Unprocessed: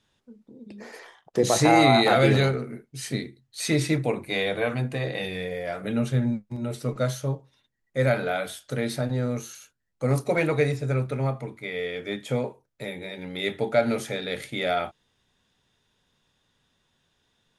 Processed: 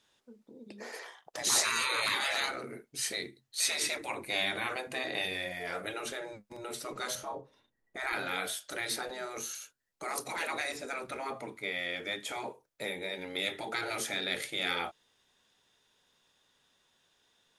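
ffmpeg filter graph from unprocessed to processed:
ffmpeg -i in.wav -filter_complex "[0:a]asettb=1/sr,asplit=3[link_01][link_02][link_03];[link_01]atrim=end=7.154[link_04];[link_02]atrim=start=7.15:end=8.13,asetpts=PTS-STARTPTS,afade=type=in:duration=0.004:curve=qsin,afade=type=out:start_time=0.976:duration=0.004:curve=qsin,tiltshelf=frequency=1400:gain=8.5,asplit=2[link_05][link_06];[link_06]adelay=34,volume=-9dB[link_07];[link_05][link_07]amix=inputs=2:normalize=0,atrim=end_sample=43218[link_08];[link_03]atrim=start=8.126[link_09];[link_04][link_08]acrossfade=duration=0.004:curve1=hsin:curve2=qsin[link_10];[link_10][link_09]acrossfade=duration=0.004:curve1=qsin:curve2=hsin,afftfilt=real='re*lt(hypot(re,im),0.141)':imag='im*lt(hypot(re,im),0.141)':win_size=1024:overlap=0.75,bass=frequency=250:gain=-12,treble=frequency=4000:gain=3" out.wav

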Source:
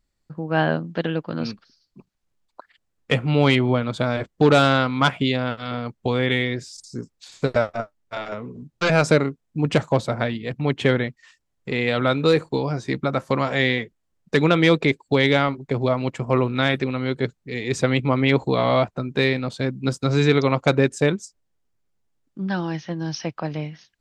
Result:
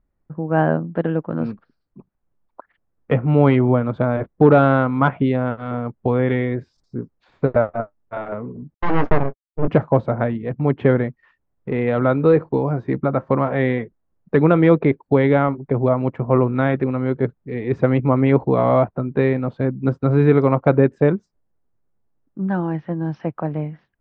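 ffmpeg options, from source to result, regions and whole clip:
ffmpeg -i in.wav -filter_complex "[0:a]asettb=1/sr,asplit=3[link_01][link_02][link_03];[link_01]atrim=end=8.744[link_04];[link_02]atrim=start=8.74:end=9.68,asetpts=PTS-STARTPTS,afade=type=in:duration=0.004:curve=qsin,afade=type=out:start_time=0.936:duration=0.004:curve=qsin,agate=range=-52dB:threshold=-26dB:ratio=16:release=100:detection=peak,asplit=2[link_05][link_06];[link_06]adelay=21,volume=-12.5dB[link_07];[link_05][link_07]amix=inputs=2:normalize=0,atrim=end_sample=41454,aeval=exprs='abs(val(0))':channel_layout=same[link_08];[link_03]atrim=start=9.676[link_09];[link_04][link_08]acrossfade=duration=0.004:curve1=hsin:curve2=qsin[link_10];[link_10][link_09]acrossfade=duration=0.004:curve1=qsin:curve2=hsin,lowpass=1400,aemphasis=mode=reproduction:type=75kf,volume=4dB" out.wav

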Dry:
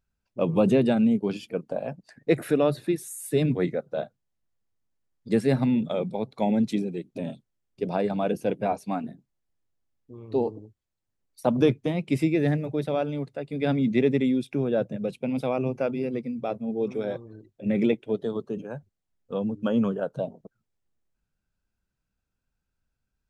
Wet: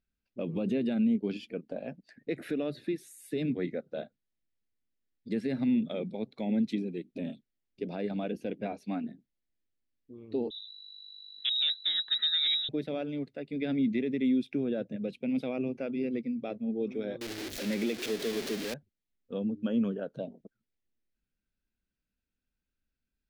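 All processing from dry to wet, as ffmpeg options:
ffmpeg -i in.wav -filter_complex "[0:a]asettb=1/sr,asplit=3[link_01][link_02][link_03];[link_01]atrim=end=10.504[link_04];[link_02]atrim=start=10.5:end=12.69,asetpts=PTS-STARTPTS,afade=type=in:duration=0.004:curve=qsin,afade=type=out:start_time=2.186:duration=0.004:curve=qsin,asoftclip=type=hard:threshold=-16.5dB,aeval=exprs='val(0)+0.00562*(sin(2*PI*50*n/s)+sin(2*PI*2*50*n/s)/2+sin(2*PI*3*50*n/s)/3+sin(2*PI*4*50*n/s)/4+sin(2*PI*5*50*n/s)/5)':channel_layout=same,lowpass=frequency=3400:width_type=q:width=0.5098,lowpass=frequency=3400:width_type=q:width=0.6013,lowpass=frequency=3400:width_type=q:width=0.9,lowpass=frequency=3400:width_type=q:width=2.563,afreqshift=-4000[link_05];[link_03]atrim=start=12.686[link_06];[link_04][link_05]acrossfade=duration=0.004:curve1=hsin:curve2=qsin[link_07];[link_07][link_06]acrossfade=duration=0.004:curve1=qsin:curve2=hsin,asettb=1/sr,asplit=3[link_08][link_09][link_10];[link_08]atrim=end=17.214[link_11];[link_09]atrim=start=17.21:end=18.74,asetpts=PTS-STARTPTS,afade=type=in:duration=0.004:curve=qsin,afade=type=out:start_time=1.526:duration=0.004:curve=qsin,aeval=exprs='val(0)+0.5*0.0501*sgn(val(0))':channel_layout=same,bass=frequency=250:gain=-9,treble=frequency=4000:gain=12[link_12];[link_10]atrim=start=18.736[link_13];[link_11][link_12]acrossfade=duration=0.004:curve1=hsin:curve2=qsin[link_14];[link_14][link_13]acrossfade=duration=0.004:curve1=qsin:curve2=hsin,highshelf=frequency=8500:gain=-9.5,alimiter=limit=-18dB:level=0:latency=1:release=143,equalizer=frequency=125:width_type=o:width=1:gain=-7,equalizer=frequency=250:width_type=o:width=1:gain=6,equalizer=frequency=1000:width_type=o:width=1:gain=-10,equalizer=frequency=2000:width_type=o:width=1:gain=5,equalizer=frequency=4000:width_type=o:width=1:gain=4,equalizer=frequency=8000:width_type=o:width=1:gain=-5,volume=-5.5dB" out.wav

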